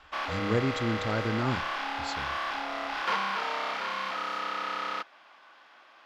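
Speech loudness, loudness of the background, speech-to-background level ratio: -32.0 LUFS, -32.0 LUFS, 0.0 dB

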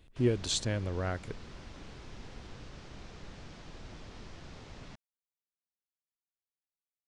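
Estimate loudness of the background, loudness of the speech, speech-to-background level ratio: -50.0 LUFS, -32.5 LUFS, 17.5 dB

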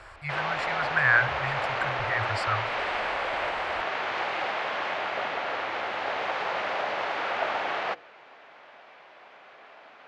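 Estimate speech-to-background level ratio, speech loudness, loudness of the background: 1.5 dB, -28.0 LUFS, -29.5 LUFS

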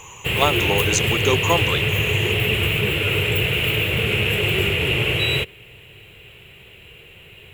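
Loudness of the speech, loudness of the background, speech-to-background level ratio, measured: -23.5 LUFS, -19.0 LUFS, -4.5 dB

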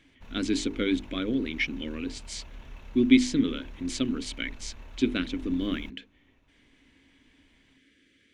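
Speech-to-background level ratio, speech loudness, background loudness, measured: 20.0 dB, -28.5 LUFS, -48.5 LUFS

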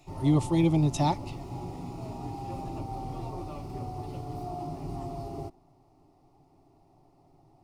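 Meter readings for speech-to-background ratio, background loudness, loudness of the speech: 12.5 dB, -38.5 LUFS, -26.0 LUFS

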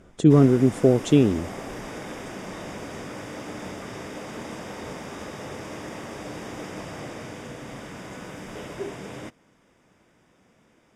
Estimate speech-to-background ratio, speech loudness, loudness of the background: 18.0 dB, -19.0 LUFS, -37.0 LUFS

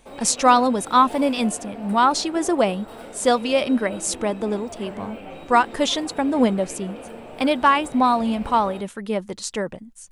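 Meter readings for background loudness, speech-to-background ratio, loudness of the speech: -37.5 LUFS, 16.5 dB, -21.0 LUFS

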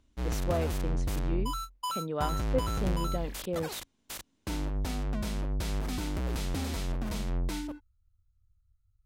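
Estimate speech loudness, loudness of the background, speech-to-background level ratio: -36.5 LUFS, -34.5 LUFS, -2.0 dB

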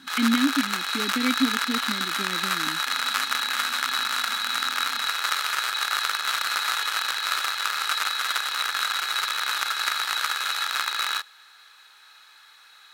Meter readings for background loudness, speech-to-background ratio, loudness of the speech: -24.5 LUFS, -4.0 dB, -28.5 LUFS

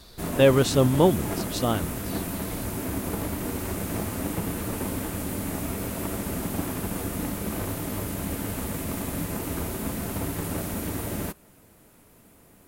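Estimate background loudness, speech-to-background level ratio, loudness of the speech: -30.5 LUFS, 8.5 dB, -22.0 LUFS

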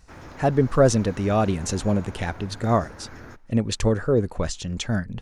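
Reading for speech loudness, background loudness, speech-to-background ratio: -23.5 LUFS, -42.5 LUFS, 19.0 dB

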